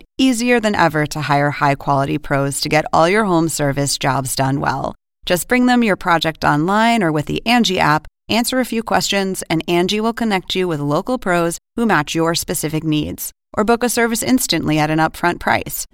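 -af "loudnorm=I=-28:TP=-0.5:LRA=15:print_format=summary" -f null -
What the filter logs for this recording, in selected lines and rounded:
Input Integrated:    -16.7 LUFS
Input True Peak:      -1.3 dBTP
Input LRA:             2.0 LU
Input Threshold:     -26.8 LUFS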